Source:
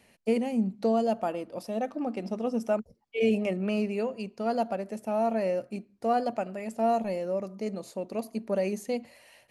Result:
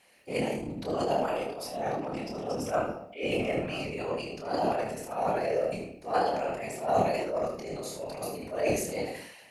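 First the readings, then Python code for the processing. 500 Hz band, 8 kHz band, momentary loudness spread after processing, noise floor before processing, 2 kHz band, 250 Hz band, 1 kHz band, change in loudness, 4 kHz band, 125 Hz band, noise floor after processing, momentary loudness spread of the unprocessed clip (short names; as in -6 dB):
-1.0 dB, n/a, 8 LU, -64 dBFS, +3.5 dB, -6.0 dB, +1.0 dB, -1.5 dB, +4.5 dB, +0.5 dB, -51 dBFS, 8 LU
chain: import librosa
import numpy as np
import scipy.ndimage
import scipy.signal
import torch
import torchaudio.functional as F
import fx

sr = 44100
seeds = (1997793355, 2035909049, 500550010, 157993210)

y = fx.highpass(x, sr, hz=700.0, slope=6)
y = fx.room_shoebox(y, sr, seeds[0], volume_m3=110.0, walls='mixed', distance_m=0.5)
y = fx.transient(y, sr, attack_db=-11, sustain_db=9)
y = fx.whisperise(y, sr, seeds[1])
y = fx.room_early_taps(y, sr, ms=(27, 76), db=(-4.0, -9.5))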